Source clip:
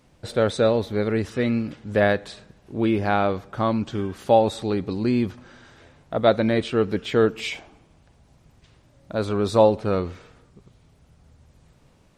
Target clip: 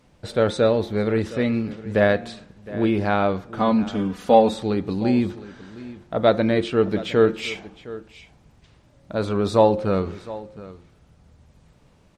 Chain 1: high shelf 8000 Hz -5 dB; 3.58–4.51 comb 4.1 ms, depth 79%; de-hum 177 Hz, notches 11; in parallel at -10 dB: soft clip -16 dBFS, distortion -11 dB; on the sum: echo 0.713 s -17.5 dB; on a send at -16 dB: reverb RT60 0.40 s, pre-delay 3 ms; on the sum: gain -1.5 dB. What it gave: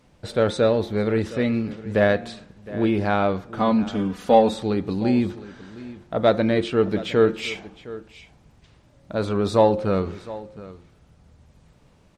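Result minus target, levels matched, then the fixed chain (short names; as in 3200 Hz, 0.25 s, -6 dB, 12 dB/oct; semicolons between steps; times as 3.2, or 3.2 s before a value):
soft clip: distortion +13 dB
high shelf 8000 Hz -5 dB; 3.58–4.51 comb 4.1 ms, depth 79%; de-hum 177 Hz, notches 11; in parallel at -10 dB: soft clip -5.5 dBFS, distortion -24 dB; on the sum: echo 0.713 s -17.5 dB; on a send at -16 dB: reverb RT60 0.40 s, pre-delay 3 ms; on the sum: gain -1.5 dB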